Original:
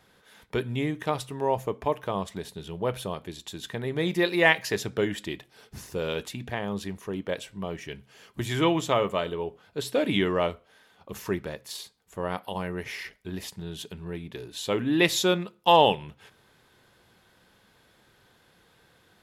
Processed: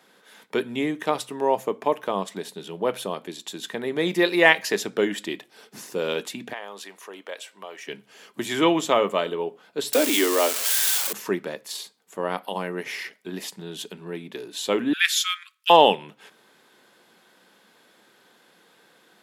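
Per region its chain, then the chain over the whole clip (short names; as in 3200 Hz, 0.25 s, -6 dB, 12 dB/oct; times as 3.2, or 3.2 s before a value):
6.53–7.88 HPF 630 Hz + compressor 1.5:1, threshold -43 dBFS
9.93–11.13 switching spikes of -16.5 dBFS + steep high-pass 230 Hz 96 dB/oct
14.93–15.7 steep high-pass 1400 Hz 96 dB/oct + frequency shift -180 Hz
whole clip: HPF 200 Hz 24 dB/oct; bell 7700 Hz +2 dB 0.32 oct; gain +4 dB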